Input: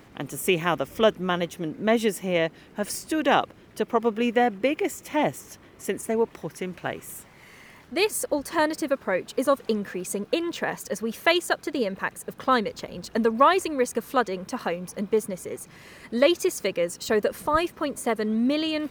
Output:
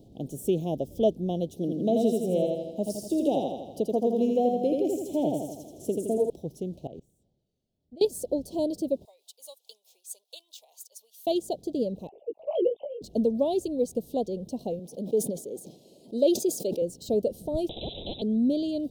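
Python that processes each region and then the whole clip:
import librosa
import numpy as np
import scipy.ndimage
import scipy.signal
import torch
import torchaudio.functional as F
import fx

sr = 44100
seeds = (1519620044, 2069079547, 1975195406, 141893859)

y = fx.chain(x, sr, fx.highpass(hz=170.0, slope=6),
    fx.echo_feedback(ms=82, feedback_pct=51, wet_db=-3.0),
    fx.band_squash(depth_pct=40), at=(1.56, 6.3))
y = fx.chain(y, sr, fx.peak_eq(hz=12000.0, db=-15.0, octaves=0.85),
    fx.level_steps(step_db=21),
    fx.band_widen(depth_pct=70), at=(6.87, 8.05))
y = fx.chain(y, sr, fx.highpass(hz=1100.0, slope=24),
    fx.tremolo(hz=4.6, depth=0.68),
    fx.high_shelf(hz=7100.0, db=6.5), at=(9.05, 11.27))
y = fx.chain(y, sr, fx.sine_speech(),
    fx.transient(attack_db=1, sustain_db=7),
    fx.doubler(ms=17.0, db=-4.5), at=(12.07, 13.02))
y = fx.chain(y, sr, fx.highpass(hz=260.0, slope=12),
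    fx.sustainer(db_per_s=62.0), at=(14.79, 16.82))
y = fx.chain(y, sr, fx.freq_invert(carrier_hz=3700),
    fx.spectral_comp(ratio=10.0), at=(17.69, 18.22))
y = scipy.signal.sosfilt(scipy.signal.cheby1(3, 1.0, [680.0, 3500.0], 'bandstop', fs=sr, output='sos'), y)
y = fx.tilt_shelf(y, sr, db=5.0, hz=790.0)
y = y * librosa.db_to_amplitude(-4.0)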